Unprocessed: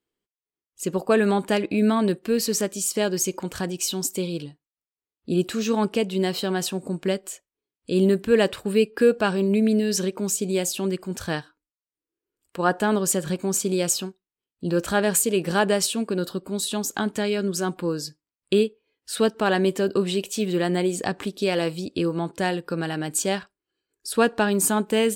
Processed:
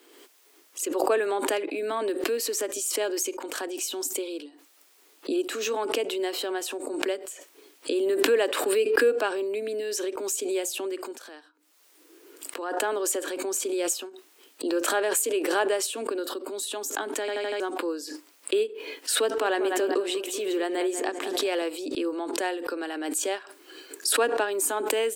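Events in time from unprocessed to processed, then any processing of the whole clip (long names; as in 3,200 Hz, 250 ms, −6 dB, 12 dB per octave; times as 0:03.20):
0:11.16–0:12.77: downward compressor 5 to 1, threshold −36 dBFS
0:17.20: stutter in place 0.08 s, 5 plays
0:19.21–0:21.62: feedback echo with a low-pass in the loop 191 ms, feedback 41%, level −10 dB
whole clip: Butterworth high-pass 270 Hz 72 dB per octave; dynamic equaliser 4,700 Hz, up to −5 dB, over −45 dBFS, Q 2; background raised ahead of every attack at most 35 dB per second; level −4 dB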